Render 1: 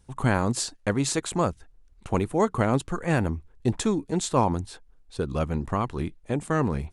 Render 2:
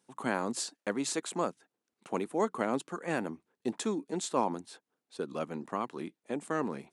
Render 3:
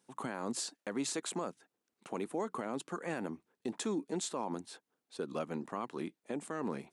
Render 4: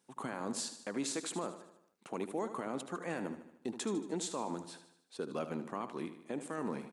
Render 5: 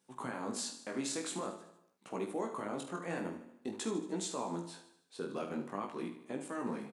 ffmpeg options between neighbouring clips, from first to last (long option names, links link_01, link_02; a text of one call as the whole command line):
ffmpeg -i in.wav -af "highpass=frequency=210:width=0.5412,highpass=frequency=210:width=1.3066,volume=-6.5dB" out.wav
ffmpeg -i in.wav -af "alimiter=level_in=2.5dB:limit=-24dB:level=0:latency=1:release=69,volume=-2.5dB" out.wav
ffmpeg -i in.wav -af "aecho=1:1:76|152|228|304|380|456:0.282|0.149|0.0792|0.042|0.0222|0.0118,volume=-1dB" out.wav
ffmpeg -i in.wav -filter_complex "[0:a]asplit=2[link_01][link_02];[link_02]adelay=47,volume=-10dB[link_03];[link_01][link_03]amix=inputs=2:normalize=0,flanger=delay=15.5:depth=7.4:speed=0.47,volume=2.5dB" out.wav